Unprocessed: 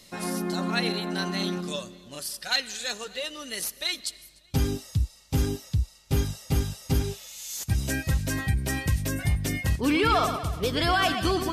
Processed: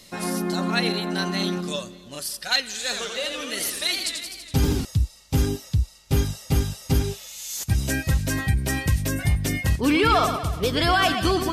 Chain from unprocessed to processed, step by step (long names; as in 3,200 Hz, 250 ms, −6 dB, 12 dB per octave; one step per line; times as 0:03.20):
0:02.68–0:04.85: feedback echo with a swinging delay time 83 ms, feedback 72%, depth 188 cents, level −5.5 dB
level +3.5 dB